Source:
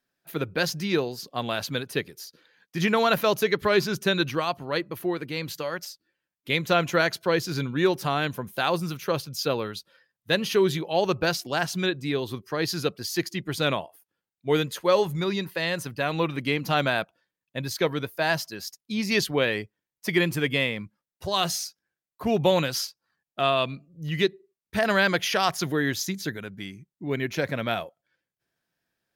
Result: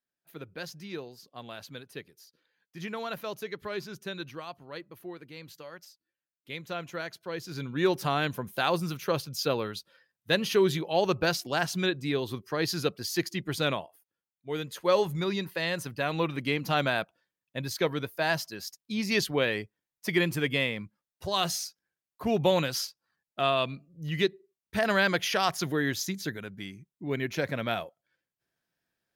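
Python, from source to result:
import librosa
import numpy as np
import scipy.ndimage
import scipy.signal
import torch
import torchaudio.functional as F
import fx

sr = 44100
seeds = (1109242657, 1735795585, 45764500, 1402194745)

y = fx.gain(x, sr, db=fx.line((7.26, -14.0), (7.92, -2.0), (13.54, -2.0), (14.48, -12.0), (14.9, -3.0)))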